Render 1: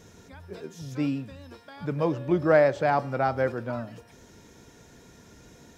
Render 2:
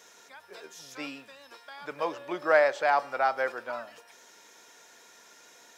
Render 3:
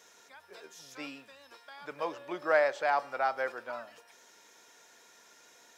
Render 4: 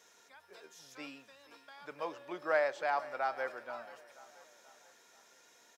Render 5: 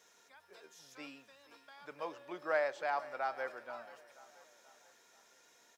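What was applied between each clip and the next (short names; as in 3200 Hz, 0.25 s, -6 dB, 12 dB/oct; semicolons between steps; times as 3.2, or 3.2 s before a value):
HPF 780 Hz 12 dB/oct; gain +3 dB
bell 80 Hz +6.5 dB 0.33 oct; gain -4 dB
feedback echo 0.482 s, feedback 48%, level -18 dB; gain -4.5 dB
crackle 450/s -67 dBFS; gain -2.5 dB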